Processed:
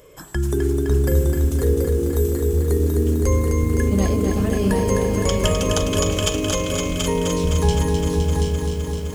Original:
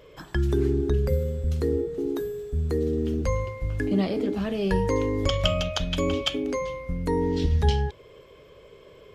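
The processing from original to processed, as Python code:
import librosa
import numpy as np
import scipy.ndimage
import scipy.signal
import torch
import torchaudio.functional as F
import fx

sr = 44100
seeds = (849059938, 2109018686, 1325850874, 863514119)

p1 = fx.high_shelf_res(x, sr, hz=5800.0, db=12.5, q=1.5)
p2 = p1 + fx.echo_single(p1, sr, ms=732, db=-4.5, dry=0)
p3 = fx.echo_crushed(p2, sr, ms=257, feedback_pct=80, bits=8, wet_db=-5.0)
y = p3 * librosa.db_to_amplitude(2.0)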